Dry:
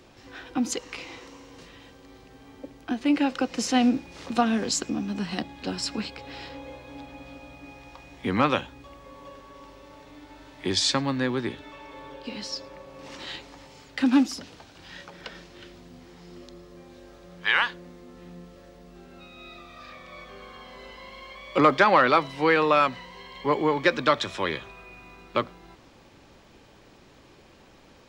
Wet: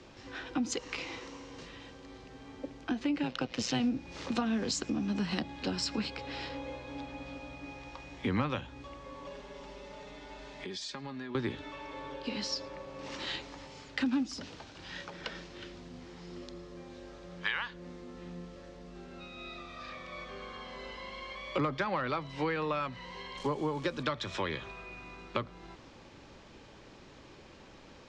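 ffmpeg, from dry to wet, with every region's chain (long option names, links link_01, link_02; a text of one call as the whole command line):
ffmpeg -i in.wav -filter_complex "[0:a]asettb=1/sr,asplit=3[link_01][link_02][link_03];[link_01]atrim=end=3.234[link_04];[link_02]atrim=start=3.23:end=3.8,asetpts=PTS-STARTPTS,afade=type=in:duration=0.004:curve=qsin,afade=type=out:start_time=0.566:duration=0.004:curve=qsin,equalizer=frequency=3300:width_type=o:width=1.2:gain=6.5,adynamicsmooth=sensitivity=6:basefreq=5600,tremolo=f=120:d=0.75[link_05];[link_03]atrim=start=3.796[link_06];[link_04][link_05]acrossfade=duration=0.004:curve1=hsin:curve2=qsin[link_07];[link_07][link_06]acrossfade=duration=0.004:curve1=qsin:curve2=hsin,asettb=1/sr,asplit=3[link_08][link_09][link_10];[link_08]atrim=end=9.264[link_11];[link_09]atrim=start=9.26:end=11.35,asetpts=PTS-STARTPTS,afade=type=in:duration=0.004:curve=qsin,afade=type=out:start_time=2.086:duration=0.004:curve=qsin,aecho=1:1:4.9:0.75,atrim=end_sample=92169,acompressor=threshold=-39dB:ratio=6:attack=3.2:release=140:knee=1:detection=peak[link_12];[link_10]atrim=start=11.346[link_13];[link_11][link_12]acrossfade=duration=0.004:curve1=hsin:curve2=qsin[link_14];[link_14][link_13]acrossfade=duration=0.004:curve1=qsin:curve2=hsin,asettb=1/sr,asplit=3[link_15][link_16][link_17];[link_15]atrim=end=23.374[link_18];[link_16]atrim=start=23.37:end=24.03,asetpts=PTS-STARTPTS,afade=type=in:duration=0.004:curve=qsin,afade=type=out:start_time=0.656:duration=0.004:curve=qsin,equalizer=frequency=2000:width_type=o:width=0.55:gain=-8.5,acrusher=bits=8:dc=4:mix=0:aa=0.000001[link_19];[link_17]atrim=start=24.026[link_20];[link_18][link_19]acrossfade=duration=0.004:curve1=hsin:curve2=qsin[link_21];[link_21][link_20]acrossfade=duration=0.004:curve1=qsin:curve2=hsin,lowpass=frequency=7400:width=0.5412,lowpass=frequency=7400:width=1.3066,bandreject=frequency=720:width=22,acrossover=split=150[link_22][link_23];[link_23]acompressor=threshold=-30dB:ratio=10[link_24];[link_22][link_24]amix=inputs=2:normalize=0" out.wav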